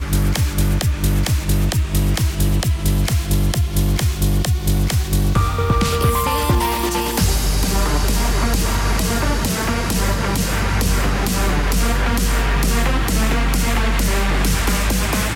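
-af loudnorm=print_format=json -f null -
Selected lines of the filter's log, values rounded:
"input_i" : "-18.6",
"input_tp" : "-7.3",
"input_lra" : "0.7",
"input_thresh" : "-28.6",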